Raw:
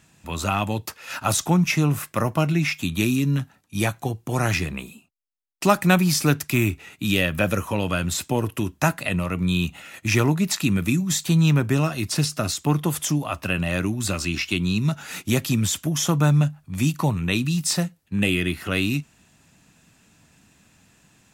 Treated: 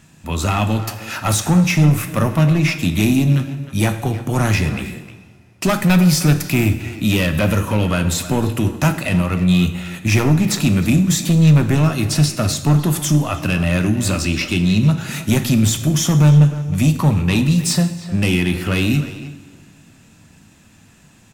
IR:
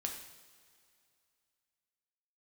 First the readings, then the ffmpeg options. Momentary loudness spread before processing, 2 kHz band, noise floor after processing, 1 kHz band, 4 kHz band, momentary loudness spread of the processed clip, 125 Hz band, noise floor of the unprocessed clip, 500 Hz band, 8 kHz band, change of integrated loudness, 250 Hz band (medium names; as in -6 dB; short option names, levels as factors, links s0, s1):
8 LU, +3.0 dB, -48 dBFS, +2.5 dB, +4.0 dB, 8 LU, +8.0 dB, -61 dBFS, +3.5 dB, +4.0 dB, +6.0 dB, +7.0 dB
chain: -filter_complex "[0:a]asoftclip=type=tanh:threshold=0.133,asplit=2[s0][s1];[s1]adelay=310,highpass=300,lowpass=3400,asoftclip=type=hard:threshold=0.0473,volume=0.282[s2];[s0][s2]amix=inputs=2:normalize=0,asplit=2[s3][s4];[1:a]atrim=start_sample=2205,lowshelf=f=380:g=8.5[s5];[s4][s5]afir=irnorm=-1:irlink=0,volume=1[s6];[s3][s6]amix=inputs=2:normalize=0"